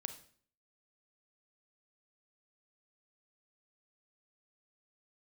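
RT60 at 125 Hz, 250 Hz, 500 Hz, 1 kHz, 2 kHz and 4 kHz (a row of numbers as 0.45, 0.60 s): 0.60, 0.60, 0.55, 0.50, 0.50, 0.45 s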